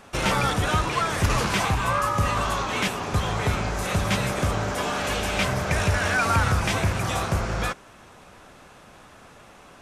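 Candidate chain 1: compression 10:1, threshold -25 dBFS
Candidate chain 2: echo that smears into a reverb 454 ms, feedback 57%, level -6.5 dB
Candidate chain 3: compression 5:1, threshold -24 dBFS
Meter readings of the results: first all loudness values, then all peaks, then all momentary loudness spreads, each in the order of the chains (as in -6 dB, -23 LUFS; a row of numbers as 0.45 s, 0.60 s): -29.0 LUFS, -23.0 LUFS, -28.0 LUFS; -14.0 dBFS, -7.5 dBFS, -12.5 dBFS; 20 LU, 14 LU, 2 LU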